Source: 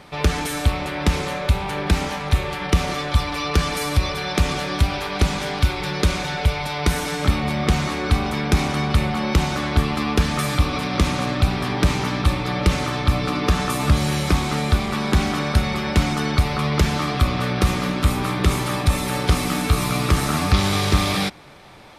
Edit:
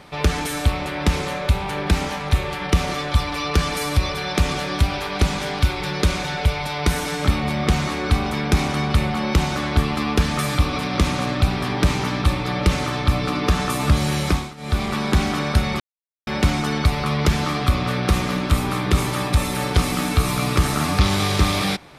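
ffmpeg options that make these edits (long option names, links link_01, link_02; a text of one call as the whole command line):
ffmpeg -i in.wav -filter_complex "[0:a]asplit=4[link_01][link_02][link_03][link_04];[link_01]atrim=end=14.54,asetpts=PTS-STARTPTS,afade=type=out:start_time=14.29:duration=0.25:silence=0.112202[link_05];[link_02]atrim=start=14.54:end=14.57,asetpts=PTS-STARTPTS,volume=-19dB[link_06];[link_03]atrim=start=14.57:end=15.8,asetpts=PTS-STARTPTS,afade=type=in:duration=0.25:silence=0.112202,afade=type=out:start_time=1.226:duration=0.004:curve=hsin,apad=pad_dur=0.47[link_07];[link_04]atrim=start=15.8,asetpts=PTS-STARTPTS,afade=type=in:duration=0.004:curve=hsin[link_08];[link_05][link_06][link_07][link_08]concat=n=4:v=0:a=1" out.wav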